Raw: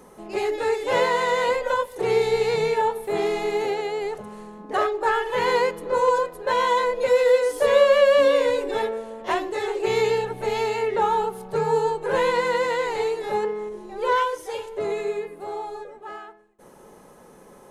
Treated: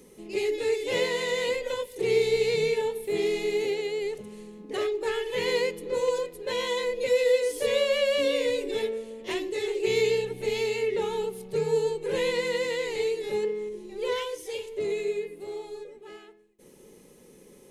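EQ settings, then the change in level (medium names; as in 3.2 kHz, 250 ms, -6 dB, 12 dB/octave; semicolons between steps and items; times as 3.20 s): bass shelf 280 Hz -4.5 dB; high-order bell 1 kHz -15.5 dB; 0.0 dB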